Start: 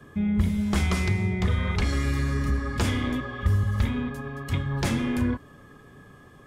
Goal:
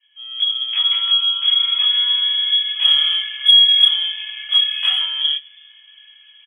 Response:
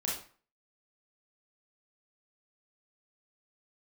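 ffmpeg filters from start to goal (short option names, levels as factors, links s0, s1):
-filter_complex "[0:a]lowpass=f=2900:t=q:w=0.5098,lowpass=f=2900:t=q:w=0.6013,lowpass=f=2900:t=q:w=0.9,lowpass=f=2900:t=q:w=2.563,afreqshift=-3400,asplit=5[s0][s1][s2][s3][s4];[s1]adelay=107,afreqshift=56,volume=0.0631[s5];[s2]adelay=214,afreqshift=112,volume=0.0355[s6];[s3]adelay=321,afreqshift=168,volume=0.0197[s7];[s4]adelay=428,afreqshift=224,volume=0.0111[s8];[s0][s5][s6][s7][s8]amix=inputs=5:normalize=0,asettb=1/sr,asplit=3[s9][s10][s11];[s9]atrim=end=2.834[s12];[s10]atrim=start=2.83:end=5.04,asetpts=PTS-STARTPTS,afade=t=in:d=0.004:c=qsin,afade=t=out:st=2.206:d=0.004:c=qsin,acontrast=27[s13];[s11]atrim=start=5.036[s14];[s12][s13]acrossfade=d=0.004:c1=hsin:c2=qsin[s15];[s15][s14]acrossfade=d=0.004:c1=qsin:c2=hsin,aderivative,dynaudnorm=f=150:g=5:m=5.01,lowshelf=f=510:t=q:w=3:g=-8[s16];[1:a]atrim=start_sample=2205,atrim=end_sample=3087,asetrate=83790,aresample=44100[s17];[s16][s17]afir=irnorm=-1:irlink=0,volume=0.75"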